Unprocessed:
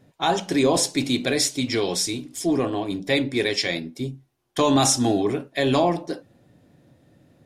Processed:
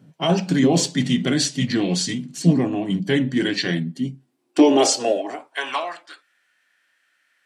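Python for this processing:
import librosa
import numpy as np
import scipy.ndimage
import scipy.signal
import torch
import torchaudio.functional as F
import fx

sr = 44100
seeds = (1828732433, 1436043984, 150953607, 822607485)

y = fx.formant_shift(x, sr, semitones=-3)
y = fx.filter_sweep_highpass(y, sr, from_hz=160.0, to_hz=1800.0, start_s=3.94, end_s=6.22, q=4.2)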